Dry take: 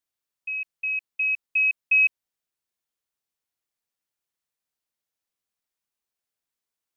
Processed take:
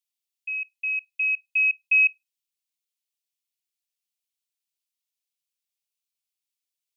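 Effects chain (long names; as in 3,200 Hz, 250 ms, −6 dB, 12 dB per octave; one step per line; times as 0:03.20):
Butterworth high-pass 2,300 Hz
on a send: convolution reverb RT60 0.25 s, pre-delay 3 ms, DRR 15 dB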